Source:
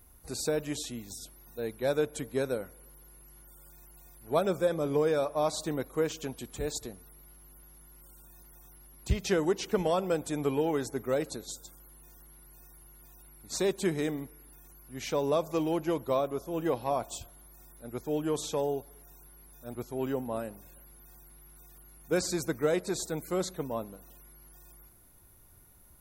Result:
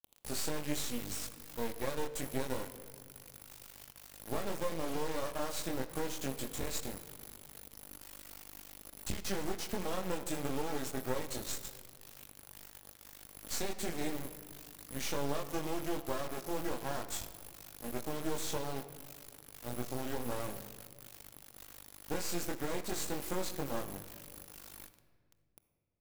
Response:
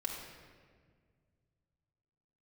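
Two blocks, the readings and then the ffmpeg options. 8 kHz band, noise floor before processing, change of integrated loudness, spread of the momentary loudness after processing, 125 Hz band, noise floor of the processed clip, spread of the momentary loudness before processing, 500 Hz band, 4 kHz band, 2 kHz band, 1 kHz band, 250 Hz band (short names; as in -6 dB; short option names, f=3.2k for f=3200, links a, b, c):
-1.5 dB, -56 dBFS, -8.0 dB, 14 LU, -6.0 dB, -64 dBFS, 15 LU, -10.0 dB, -2.0 dB, -3.0 dB, -5.0 dB, -6.5 dB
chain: -filter_complex "[0:a]highshelf=f=3.4k:g=5,acompressor=threshold=-33dB:ratio=20,flanger=delay=20:depth=4.6:speed=0.12,acrusher=bits=5:dc=4:mix=0:aa=0.000001,asplit=2[a][b];[1:a]atrim=start_sample=2205[c];[b][c]afir=irnorm=-1:irlink=0,volume=-7dB[d];[a][d]amix=inputs=2:normalize=0,volume=3.5dB"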